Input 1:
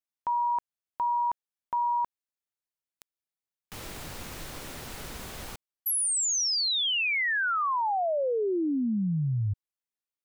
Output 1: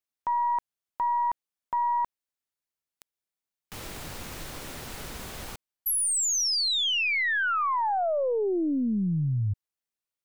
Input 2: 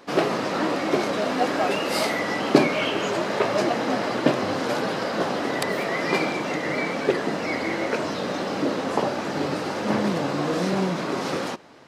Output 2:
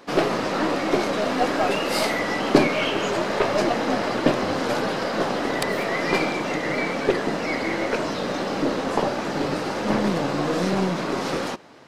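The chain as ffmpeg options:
ffmpeg -i in.wav -filter_complex "[0:a]aeval=exprs='0.891*(cos(1*acos(clip(val(0)/0.891,-1,1)))-cos(1*PI/2))+0.0398*(cos(8*acos(clip(val(0)/0.891,-1,1)))-cos(8*PI/2))':channel_layout=same,asplit=2[link_01][link_02];[link_02]asoftclip=type=tanh:threshold=-11.5dB,volume=-9dB[link_03];[link_01][link_03]amix=inputs=2:normalize=0,volume=-1.5dB" out.wav

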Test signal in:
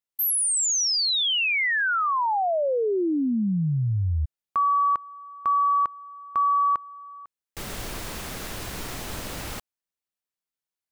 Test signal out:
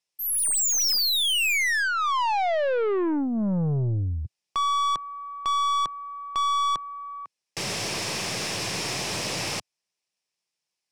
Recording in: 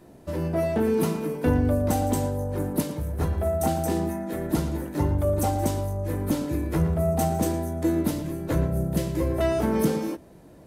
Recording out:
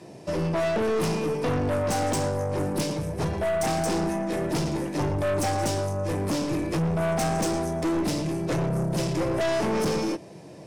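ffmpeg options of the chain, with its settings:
ffmpeg -i in.wav -af "highpass=frequency=110:width=0.5412,highpass=frequency=110:width=1.3066,equalizer=frequency=250:width_type=q:width=4:gain=-8,equalizer=frequency=1400:width_type=q:width=4:gain=-7,equalizer=frequency=2500:width_type=q:width=4:gain=5,equalizer=frequency=5300:width_type=q:width=4:gain=9,lowpass=frequency=9900:width=0.5412,lowpass=frequency=9900:width=1.3066,aeval=exprs='(tanh(31.6*val(0)+0.2)-tanh(0.2))/31.6':channel_layout=same,volume=7.5dB" out.wav

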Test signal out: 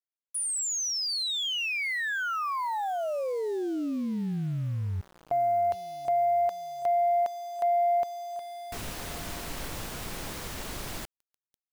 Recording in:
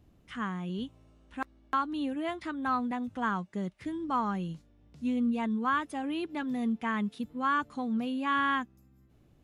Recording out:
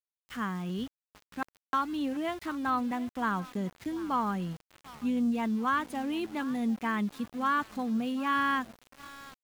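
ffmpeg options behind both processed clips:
ffmpeg -i in.wav -af "aecho=1:1:740|1480|2220:0.106|0.0424|0.0169,aeval=exprs='val(0)*gte(abs(val(0)),0.00562)':channel_layout=same,aeval=exprs='0.119*(cos(1*acos(clip(val(0)/0.119,-1,1)))-cos(1*PI/2))+0.00422*(cos(5*acos(clip(val(0)/0.119,-1,1)))-cos(5*PI/2))+0.000944*(cos(7*acos(clip(val(0)/0.119,-1,1)))-cos(7*PI/2))':channel_layout=same" out.wav

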